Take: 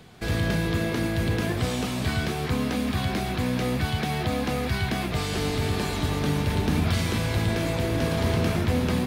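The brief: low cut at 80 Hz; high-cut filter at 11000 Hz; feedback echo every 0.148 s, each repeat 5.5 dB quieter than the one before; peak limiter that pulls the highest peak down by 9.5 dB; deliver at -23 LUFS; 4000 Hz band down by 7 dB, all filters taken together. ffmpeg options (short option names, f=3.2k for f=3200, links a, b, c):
-af "highpass=80,lowpass=11k,equalizer=f=4k:t=o:g=-9,alimiter=limit=-22.5dB:level=0:latency=1,aecho=1:1:148|296|444|592|740|888|1036:0.531|0.281|0.149|0.079|0.0419|0.0222|0.0118,volume=6.5dB"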